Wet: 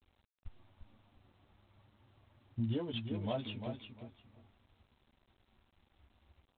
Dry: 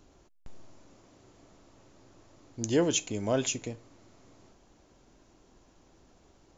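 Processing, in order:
spectral dynamics exaggerated over time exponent 1.5
high-pass filter 46 Hz 6 dB per octave
parametric band 1,900 Hz −12 dB 0.59 octaves
downward compressor 3 to 1, threshold −48 dBFS, peak gain reduction 19 dB
graphic EQ with 15 bands 100 Hz +3 dB, 400 Hz −6 dB, 1,600 Hz −5 dB
automatic gain control gain up to 4 dB
multi-voice chorus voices 4, 0.39 Hz, delay 11 ms, depth 3 ms
on a send: repeating echo 349 ms, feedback 20%, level −7.5 dB
on the sum: level +9 dB
G.726 24 kbit/s 8,000 Hz

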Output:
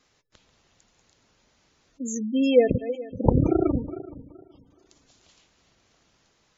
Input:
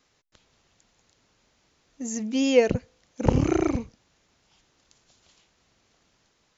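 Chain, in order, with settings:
feedback delay that plays each chunk backwards 211 ms, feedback 49%, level −13 dB
gate on every frequency bin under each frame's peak −20 dB strong
level +1.5 dB

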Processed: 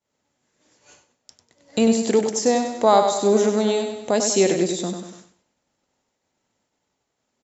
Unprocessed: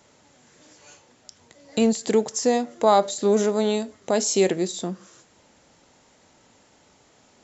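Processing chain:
on a send: repeating echo 97 ms, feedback 49%, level −6.5 dB
on the sum: downward expander −43 dBFS
level +1.5 dB

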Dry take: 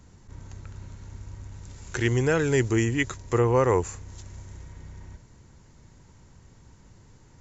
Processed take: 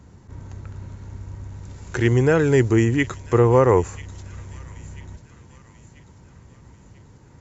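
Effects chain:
high-pass filter 51 Hz
high-shelf EQ 2,200 Hz −9 dB
delay with a high-pass on its return 990 ms, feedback 48%, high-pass 3,000 Hz, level −11.5 dB
level +6.5 dB

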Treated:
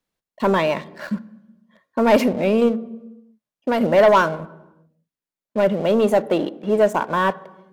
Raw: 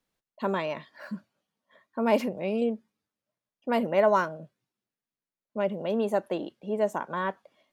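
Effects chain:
leveller curve on the samples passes 2
0:02.68–0:03.81: downward compressor, threshold −21 dBFS, peak gain reduction 5.5 dB
on a send: convolution reverb RT60 1.1 s, pre-delay 3 ms, DRR 18 dB
on the sum: level +4 dB

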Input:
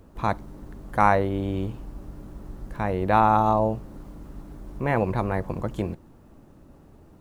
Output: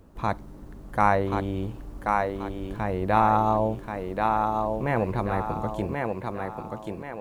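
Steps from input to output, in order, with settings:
feedback echo with a high-pass in the loop 1,083 ms, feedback 42%, high-pass 170 Hz, level −3 dB
level −2 dB

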